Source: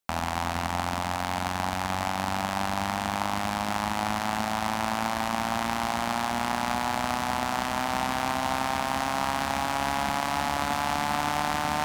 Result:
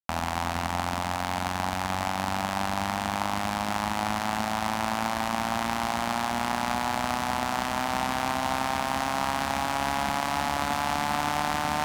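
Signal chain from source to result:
bit reduction 10 bits

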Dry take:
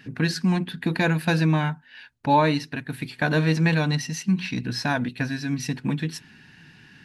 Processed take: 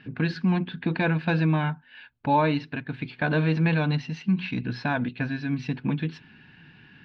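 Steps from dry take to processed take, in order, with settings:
low-pass filter 3,500 Hz 24 dB per octave
notch filter 1,900 Hz, Q 11
in parallel at −3 dB: brickwall limiter −15.5 dBFS, peak gain reduction 7 dB
on the sum: level −5.5 dB

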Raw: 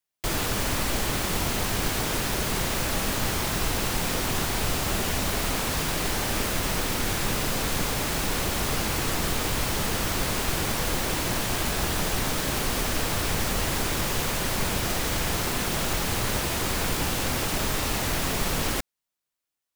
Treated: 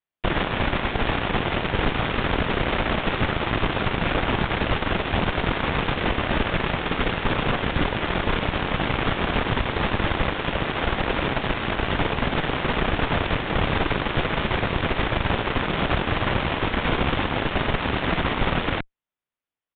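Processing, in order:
high-frequency loss of the air 180 metres
harmonic generator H 6 −6 dB, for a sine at −13.5 dBFS
downsampling to 8,000 Hz

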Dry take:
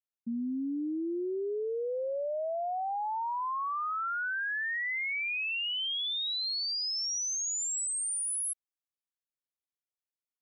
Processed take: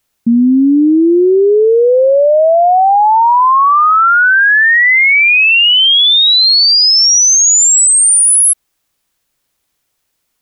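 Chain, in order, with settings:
low-shelf EQ 120 Hz +6.5 dB
boost into a limiter +32 dB
level −4 dB

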